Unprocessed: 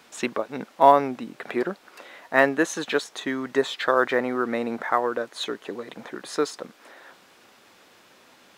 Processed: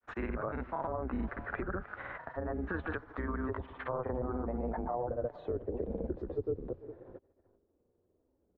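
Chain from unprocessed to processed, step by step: octaver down 2 oct, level -1 dB; air absorption 73 m; treble ducked by the level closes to 710 Hz, closed at -16.5 dBFS; low shelf 60 Hz +8.5 dB; gate -47 dBFS, range -30 dB; grains 0.1 s, grains 20/s, spray 26 ms, pitch spread up and down by 0 st; compressor 4:1, threshold -29 dBFS, peak gain reduction 13.5 dB; echo 0.443 s -22.5 dB; limiter -27 dBFS, peak gain reduction 11.5 dB; low-pass sweep 1500 Hz -> 420 Hz, 2.77–6.51; grains, pitch spread up and down by 0 st; three-band squash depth 40%

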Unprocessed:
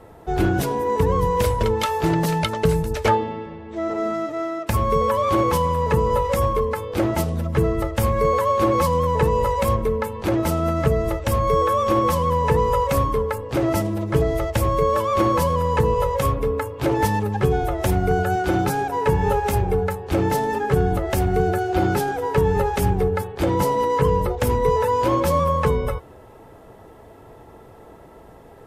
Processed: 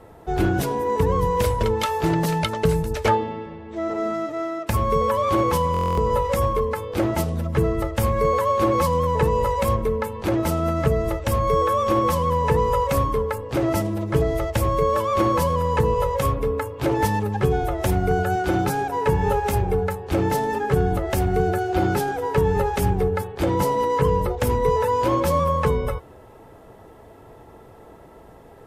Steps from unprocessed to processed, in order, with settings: stuck buffer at 5.72, samples 1024, times 10; gain -1 dB

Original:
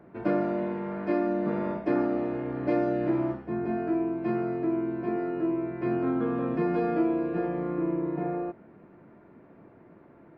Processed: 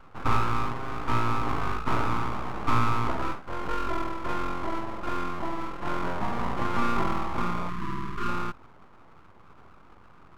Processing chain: band shelf 630 Hz +14 dB 1 oct; full-wave rectifier; spectral gain 7.69–8.28, 410–940 Hz -22 dB; gain -3.5 dB

